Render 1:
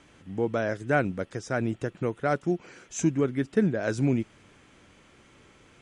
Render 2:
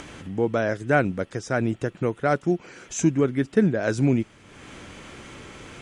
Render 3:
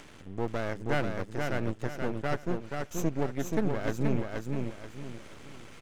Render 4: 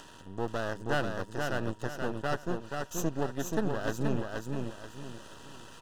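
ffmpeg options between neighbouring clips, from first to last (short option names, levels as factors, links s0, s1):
-af "acompressor=mode=upward:threshold=0.0178:ratio=2.5,volume=1.58"
-af "aeval=exprs='max(val(0),0)':c=same,aecho=1:1:480|960|1440|1920:0.631|0.215|0.0729|0.0248,volume=0.501"
-af "asuperstop=centerf=2200:order=4:qfactor=3.2,tiltshelf=f=670:g=-3,aeval=exprs='val(0)+0.00112*sin(2*PI*950*n/s)':c=same"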